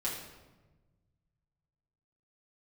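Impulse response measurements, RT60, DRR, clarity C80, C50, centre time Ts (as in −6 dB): 1.2 s, −7.5 dB, 6.0 dB, 3.5 dB, 48 ms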